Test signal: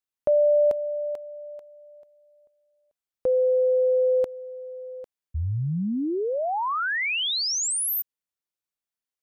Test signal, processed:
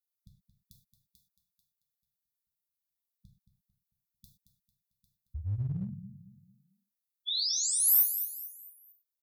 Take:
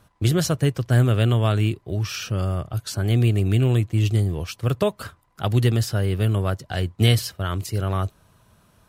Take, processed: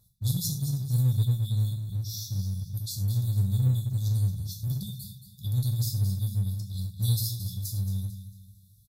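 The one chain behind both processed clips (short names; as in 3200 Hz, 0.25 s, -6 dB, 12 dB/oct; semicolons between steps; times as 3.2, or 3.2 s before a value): brick-wall FIR band-stop 200–3400 Hz; band shelf 3900 Hz -9.5 dB 2.8 oct; on a send: feedback echo 0.224 s, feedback 37%, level -11 dB; on the sum: non-linear reverb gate 0.14 s falling, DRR 0 dB; in parallel at -10.5 dB: one-sided clip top -27 dBFS; on the sum: low shelf 360 Hz -11.5 dB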